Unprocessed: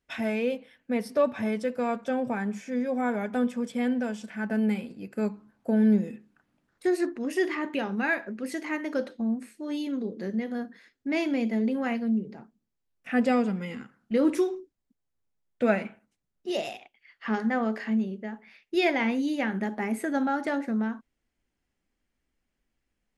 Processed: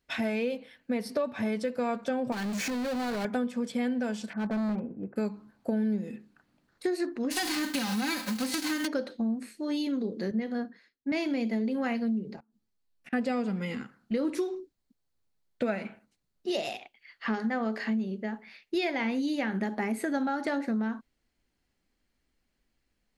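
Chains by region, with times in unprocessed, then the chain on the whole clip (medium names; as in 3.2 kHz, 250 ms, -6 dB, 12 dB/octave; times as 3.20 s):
2.32–3.25 s: high-pass 82 Hz + compression, threshold -40 dBFS + power-law waveshaper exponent 0.35
4.33–5.16 s: low-pass 1.3 kHz 24 dB/octave + hard clipper -29 dBFS
7.30–8.86 s: formants flattened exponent 0.3 + comb 3.9 ms, depth 96% + compression 2.5:1, threshold -27 dBFS
10.31–11.12 s: treble shelf 6.6 kHz -10.5 dB + band-stop 3.5 kHz, Q 22 + three bands expanded up and down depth 100%
12.36–13.13 s: inverted gate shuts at -34 dBFS, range -25 dB + three-phase chorus
whole clip: peaking EQ 4.3 kHz +7.5 dB 0.3 oct; compression 6:1, threshold -29 dBFS; trim +2.5 dB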